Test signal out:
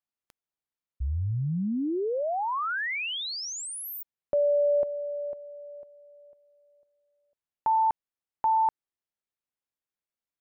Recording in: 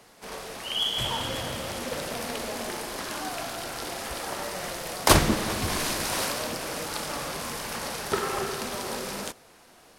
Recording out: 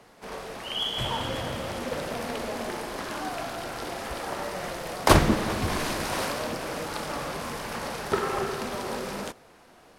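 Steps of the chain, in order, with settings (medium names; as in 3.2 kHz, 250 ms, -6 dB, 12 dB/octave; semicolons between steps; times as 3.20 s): treble shelf 3.3 kHz -9.5 dB; trim +2 dB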